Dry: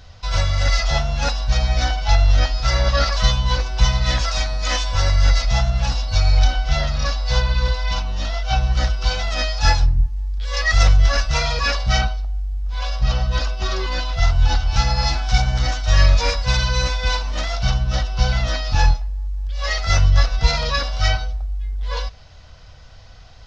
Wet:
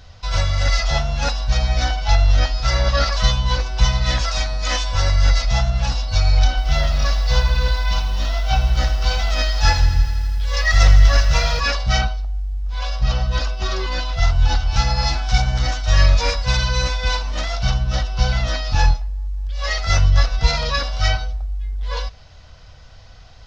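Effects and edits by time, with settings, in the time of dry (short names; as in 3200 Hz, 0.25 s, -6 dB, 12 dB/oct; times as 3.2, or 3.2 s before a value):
6.49–11.6 lo-fi delay 82 ms, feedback 80%, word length 7-bit, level -12 dB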